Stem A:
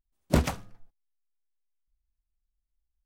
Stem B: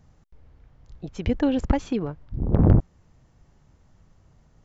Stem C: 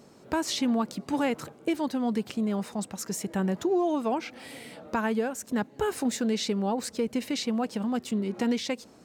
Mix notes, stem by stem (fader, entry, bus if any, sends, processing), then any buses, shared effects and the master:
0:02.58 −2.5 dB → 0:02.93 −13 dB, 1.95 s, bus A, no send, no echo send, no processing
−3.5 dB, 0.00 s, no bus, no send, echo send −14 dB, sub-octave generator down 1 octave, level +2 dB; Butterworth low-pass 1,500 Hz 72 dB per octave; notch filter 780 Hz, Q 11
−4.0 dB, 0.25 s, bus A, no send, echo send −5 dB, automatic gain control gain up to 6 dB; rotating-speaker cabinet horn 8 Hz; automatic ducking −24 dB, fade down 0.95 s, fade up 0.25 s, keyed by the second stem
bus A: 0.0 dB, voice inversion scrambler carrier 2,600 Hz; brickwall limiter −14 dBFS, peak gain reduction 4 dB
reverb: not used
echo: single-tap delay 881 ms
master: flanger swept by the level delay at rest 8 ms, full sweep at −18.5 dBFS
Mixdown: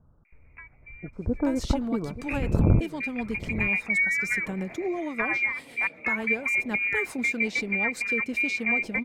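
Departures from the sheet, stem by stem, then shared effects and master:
stem A −2.5 dB → −14.0 dB
stem B: missing sub-octave generator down 1 octave, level +2 dB
master: missing flanger swept by the level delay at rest 8 ms, full sweep at −18.5 dBFS

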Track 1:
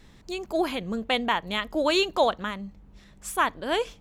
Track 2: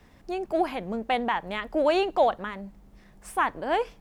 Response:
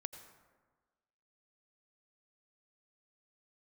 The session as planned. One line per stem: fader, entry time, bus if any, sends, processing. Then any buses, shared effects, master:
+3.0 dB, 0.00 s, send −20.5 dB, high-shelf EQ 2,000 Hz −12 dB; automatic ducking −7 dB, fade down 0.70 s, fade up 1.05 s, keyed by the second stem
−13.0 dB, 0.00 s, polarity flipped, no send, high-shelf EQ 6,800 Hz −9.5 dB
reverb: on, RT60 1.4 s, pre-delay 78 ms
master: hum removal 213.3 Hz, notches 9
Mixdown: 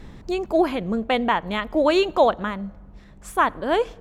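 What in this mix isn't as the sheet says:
stem 1 +3.0 dB → +12.5 dB
master: missing hum removal 213.3 Hz, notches 9

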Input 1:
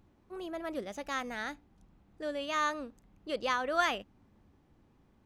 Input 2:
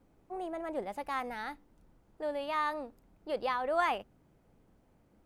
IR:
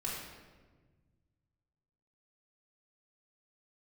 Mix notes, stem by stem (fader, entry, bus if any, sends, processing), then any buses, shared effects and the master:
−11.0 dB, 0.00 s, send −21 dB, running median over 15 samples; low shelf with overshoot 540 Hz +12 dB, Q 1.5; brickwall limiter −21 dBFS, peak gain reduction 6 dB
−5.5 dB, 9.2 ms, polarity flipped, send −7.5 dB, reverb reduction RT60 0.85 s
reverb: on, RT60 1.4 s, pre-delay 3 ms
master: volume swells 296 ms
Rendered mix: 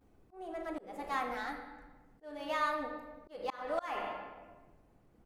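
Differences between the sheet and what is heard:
stem 1: missing low shelf with overshoot 540 Hz +12 dB, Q 1.5
reverb return +8.0 dB

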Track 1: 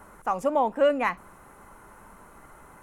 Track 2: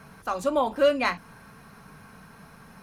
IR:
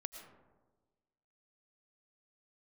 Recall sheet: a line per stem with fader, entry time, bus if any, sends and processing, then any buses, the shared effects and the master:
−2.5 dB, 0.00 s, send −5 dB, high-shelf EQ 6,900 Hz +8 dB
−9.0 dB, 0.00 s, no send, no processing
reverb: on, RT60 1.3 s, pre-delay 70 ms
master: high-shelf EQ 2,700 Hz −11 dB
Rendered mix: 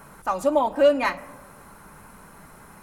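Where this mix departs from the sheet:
stem 2 −9.0 dB → −2.5 dB
master: missing high-shelf EQ 2,700 Hz −11 dB

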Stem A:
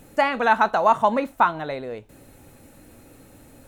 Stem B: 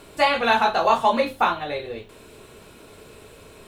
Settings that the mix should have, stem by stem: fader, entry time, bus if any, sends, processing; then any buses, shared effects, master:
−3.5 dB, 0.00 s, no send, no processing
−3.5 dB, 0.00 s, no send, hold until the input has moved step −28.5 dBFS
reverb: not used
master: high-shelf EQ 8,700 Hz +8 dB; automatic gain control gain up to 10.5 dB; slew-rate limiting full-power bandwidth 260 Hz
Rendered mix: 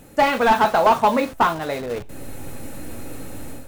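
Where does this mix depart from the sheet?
stem A −3.5 dB → +2.5 dB
master: missing high-shelf EQ 8,700 Hz +8 dB

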